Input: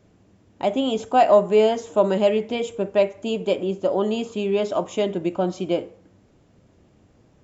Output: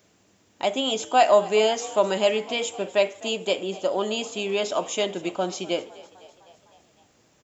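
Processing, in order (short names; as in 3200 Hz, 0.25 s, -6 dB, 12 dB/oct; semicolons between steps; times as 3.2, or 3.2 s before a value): tilt +3.5 dB/oct; on a send: frequency-shifting echo 0.254 s, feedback 63%, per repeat +55 Hz, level -20 dB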